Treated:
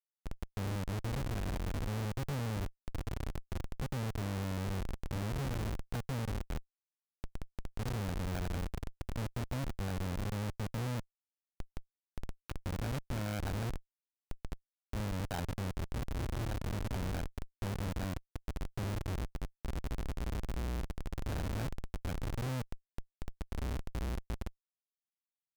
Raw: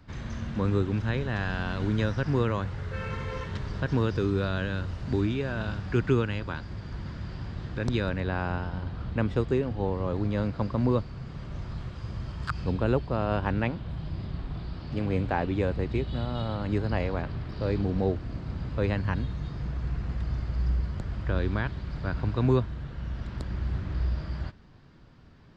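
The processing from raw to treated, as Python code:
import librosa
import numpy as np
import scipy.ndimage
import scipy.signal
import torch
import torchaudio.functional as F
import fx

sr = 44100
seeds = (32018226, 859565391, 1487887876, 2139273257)

y = fx.lower_of_two(x, sr, delay_ms=1.3)
y = fx.schmitt(y, sr, flips_db=-27.5)
y = y * librosa.db_to_amplitude(-5.5)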